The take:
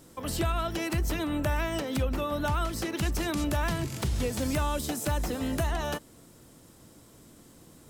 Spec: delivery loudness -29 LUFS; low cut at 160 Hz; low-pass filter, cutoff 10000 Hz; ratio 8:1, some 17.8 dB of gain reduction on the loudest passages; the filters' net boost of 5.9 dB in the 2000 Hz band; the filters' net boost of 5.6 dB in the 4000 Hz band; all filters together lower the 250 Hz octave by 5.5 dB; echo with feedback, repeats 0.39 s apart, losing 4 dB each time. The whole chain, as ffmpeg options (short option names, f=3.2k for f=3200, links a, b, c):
-af "highpass=160,lowpass=10k,equalizer=f=250:t=o:g=-6.5,equalizer=f=2k:t=o:g=6.5,equalizer=f=4k:t=o:g=5,acompressor=threshold=-45dB:ratio=8,aecho=1:1:390|780|1170|1560|1950|2340|2730|3120|3510:0.631|0.398|0.25|0.158|0.0994|0.0626|0.0394|0.0249|0.0157,volume=16dB"